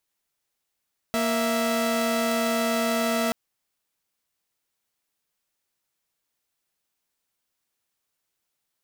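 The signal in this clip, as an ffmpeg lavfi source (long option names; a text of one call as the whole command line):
ffmpeg -f lavfi -i "aevalsrc='0.075*((2*mod(233.08*t,1)-1)+(2*mod(659.26*t,1)-1))':duration=2.18:sample_rate=44100" out.wav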